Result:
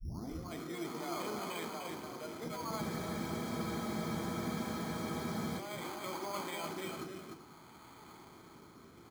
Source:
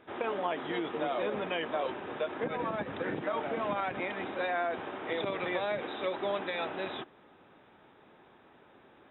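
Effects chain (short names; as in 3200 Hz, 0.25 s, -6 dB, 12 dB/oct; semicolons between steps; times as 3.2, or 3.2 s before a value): tape start at the beginning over 0.43 s; LPF 3100 Hz; comb 0.9 ms, depth 62%; de-hum 51.1 Hz, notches 9; reverse; compressor 6:1, threshold -42 dBFS, peak gain reduction 16 dB; reverse; rotary speaker horn 0.6 Hz; echo 0.298 s -4.5 dB; on a send at -6 dB: reverb, pre-delay 3 ms; on the sum: careless resampling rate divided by 8×, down filtered, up hold; spectral freeze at 2.83, 2.76 s; gain +4 dB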